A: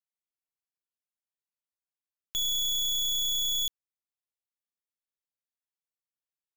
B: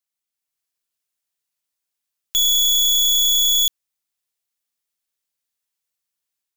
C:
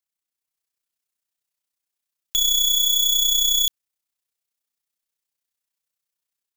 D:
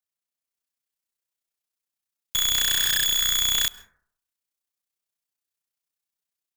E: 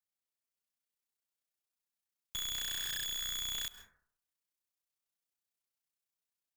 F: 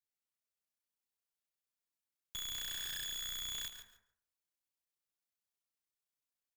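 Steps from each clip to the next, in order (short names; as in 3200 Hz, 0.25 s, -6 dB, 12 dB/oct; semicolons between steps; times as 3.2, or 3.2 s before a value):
high shelf 2200 Hz +8.5 dB; AGC gain up to 4 dB; gain +1.5 dB
AM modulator 31 Hz, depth 40%
cycle switcher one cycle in 2, inverted; reverb RT60 0.60 s, pre-delay 0.122 s, DRR 19 dB; gain -3.5 dB
compressor, threshold -28 dBFS, peak gain reduction 8.5 dB; soft clip -28.5 dBFS, distortion -14 dB; gain -5 dB
feedback echo 0.143 s, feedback 16%, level -10.5 dB; gain -4 dB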